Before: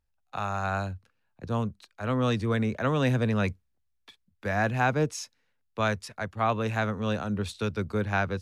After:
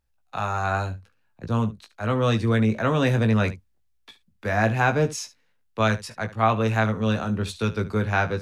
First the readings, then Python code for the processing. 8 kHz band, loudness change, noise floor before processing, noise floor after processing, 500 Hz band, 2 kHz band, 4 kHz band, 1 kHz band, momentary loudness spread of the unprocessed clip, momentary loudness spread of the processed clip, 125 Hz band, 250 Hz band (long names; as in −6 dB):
+4.5 dB, +5.0 dB, −74 dBFS, −66 dBFS, +4.5 dB, +4.5 dB, +4.5 dB, +4.5 dB, 12 LU, 13 LU, +5.5 dB, +4.5 dB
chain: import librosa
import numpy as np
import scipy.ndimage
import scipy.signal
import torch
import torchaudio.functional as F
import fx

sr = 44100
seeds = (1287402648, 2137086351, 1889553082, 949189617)

y = fx.room_early_taps(x, sr, ms=(18, 73), db=(-6.5, -16.5))
y = y * librosa.db_to_amplitude(3.5)